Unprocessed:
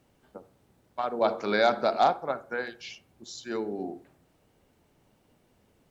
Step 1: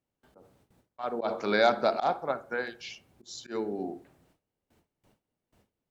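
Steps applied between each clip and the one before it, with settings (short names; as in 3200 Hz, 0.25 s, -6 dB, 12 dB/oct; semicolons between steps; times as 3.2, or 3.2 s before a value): auto swell 0.109 s; gate with hold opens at -54 dBFS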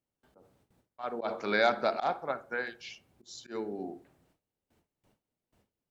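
dynamic EQ 2000 Hz, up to +5 dB, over -43 dBFS, Q 1.1; gain -4 dB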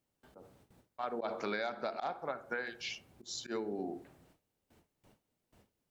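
compressor 8:1, threshold -39 dBFS, peak gain reduction 18 dB; gain +5 dB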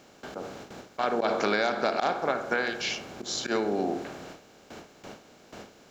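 per-bin compression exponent 0.6; gain +8 dB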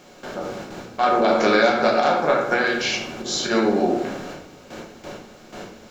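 shoebox room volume 120 m³, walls mixed, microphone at 0.95 m; gain +4.5 dB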